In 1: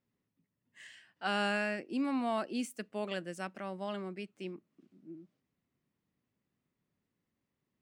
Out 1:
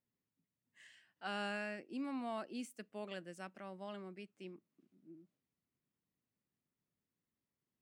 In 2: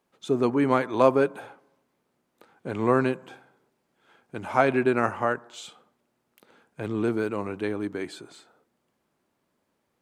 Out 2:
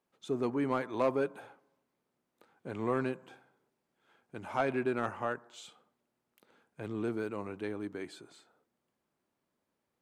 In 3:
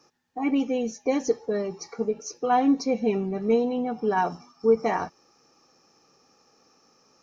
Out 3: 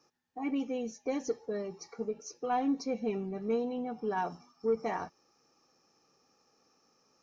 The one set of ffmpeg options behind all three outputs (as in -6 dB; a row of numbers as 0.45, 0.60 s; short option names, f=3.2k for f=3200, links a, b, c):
-af "asoftclip=type=tanh:threshold=-11dB,volume=-8.5dB"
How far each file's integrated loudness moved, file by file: -8.5, -9.5, -9.0 LU